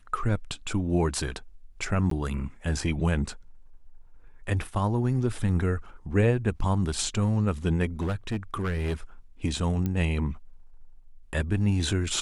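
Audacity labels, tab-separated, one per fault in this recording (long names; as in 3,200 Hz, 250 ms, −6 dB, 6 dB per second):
2.100000	2.110000	drop-out 13 ms
8.000000	8.940000	clipping −24.5 dBFS
9.860000	9.860000	click −17 dBFS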